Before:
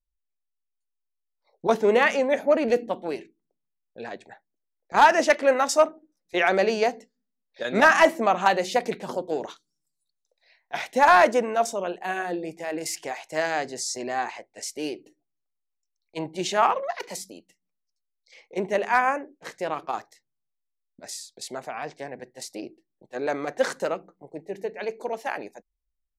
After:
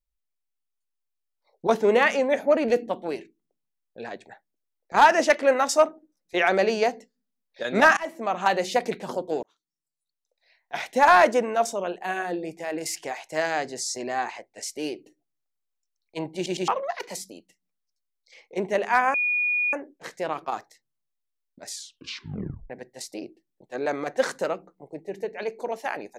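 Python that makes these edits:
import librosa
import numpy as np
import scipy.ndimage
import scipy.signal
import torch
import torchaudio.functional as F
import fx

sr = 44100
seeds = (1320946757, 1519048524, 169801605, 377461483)

y = fx.edit(x, sr, fx.fade_in_from(start_s=7.97, length_s=0.64, floor_db=-23.5),
    fx.fade_in_span(start_s=9.43, length_s=1.45),
    fx.stutter_over(start_s=16.35, slice_s=0.11, count=3),
    fx.insert_tone(at_s=19.14, length_s=0.59, hz=2450.0, db=-21.0),
    fx.tape_stop(start_s=21.11, length_s=1.0), tone=tone)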